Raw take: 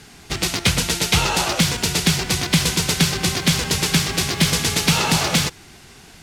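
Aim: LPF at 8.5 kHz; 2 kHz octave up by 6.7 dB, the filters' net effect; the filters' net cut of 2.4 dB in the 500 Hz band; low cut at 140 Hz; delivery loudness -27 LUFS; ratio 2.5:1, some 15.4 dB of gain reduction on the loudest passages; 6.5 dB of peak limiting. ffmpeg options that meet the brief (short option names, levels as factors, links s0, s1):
-af "highpass=140,lowpass=8500,equalizer=f=500:t=o:g=-3.5,equalizer=f=2000:t=o:g=8.5,acompressor=threshold=0.0158:ratio=2.5,volume=1.88,alimiter=limit=0.158:level=0:latency=1"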